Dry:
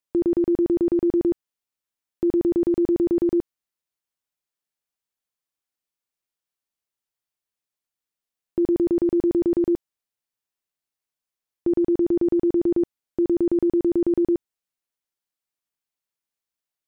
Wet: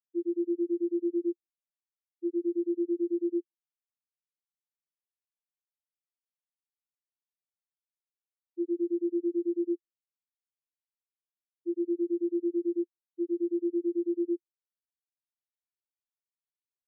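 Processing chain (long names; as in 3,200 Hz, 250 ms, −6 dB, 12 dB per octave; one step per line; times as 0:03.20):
single-tap delay 165 ms −20.5 dB
every bin expanded away from the loudest bin 4 to 1
level −7.5 dB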